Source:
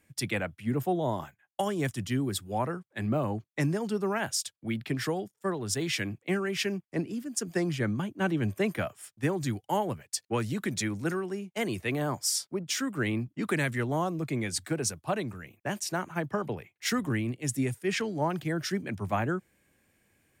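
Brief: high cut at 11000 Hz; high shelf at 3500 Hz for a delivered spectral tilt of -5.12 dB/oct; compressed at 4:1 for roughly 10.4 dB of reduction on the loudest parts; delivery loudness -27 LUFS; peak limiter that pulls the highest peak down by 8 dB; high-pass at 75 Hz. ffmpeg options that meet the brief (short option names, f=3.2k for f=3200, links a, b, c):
-af "highpass=75,lowpass=11k,highshelf=f=3.5k:g=-6.5,acompressor=threshold=-37dB:ratio=4,volume=15dB,alimiter=limit=-17dB:level=0:latency=1"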